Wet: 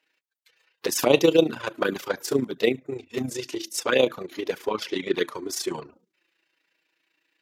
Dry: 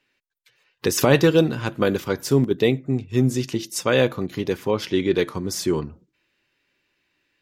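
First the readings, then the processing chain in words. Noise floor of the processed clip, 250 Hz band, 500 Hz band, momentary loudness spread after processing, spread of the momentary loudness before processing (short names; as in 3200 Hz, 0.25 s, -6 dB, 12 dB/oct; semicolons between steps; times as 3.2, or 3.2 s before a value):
-80 dBFS, -6.0 dB, -2.5 dB, 13 LU, 9 LU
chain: HPF 330 Hz 12 dB/oct; envelope flanger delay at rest 6.3 ms, full sweep at -14.5 dBFS; AM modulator 28 Hz, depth 45%; gain +4 dB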